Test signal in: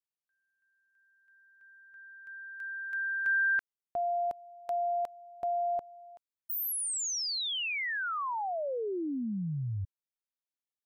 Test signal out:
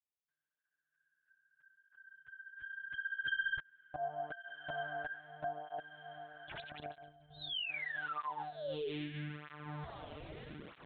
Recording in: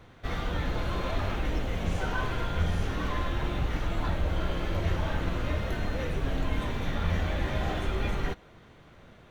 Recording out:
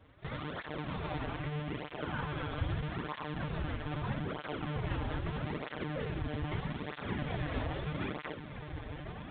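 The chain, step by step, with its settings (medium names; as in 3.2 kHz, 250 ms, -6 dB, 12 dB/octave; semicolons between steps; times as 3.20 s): tracing distortion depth 0.053 ms; on a send: echo that smears into a reverb 1469 ms, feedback 49%, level -8 dB; on the sum: monotone LPC vocoder at 8 kHz 150 Hz; cancelling through-zero flanger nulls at 0.79 Hz, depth 5.9 ms; trim -4.5 dB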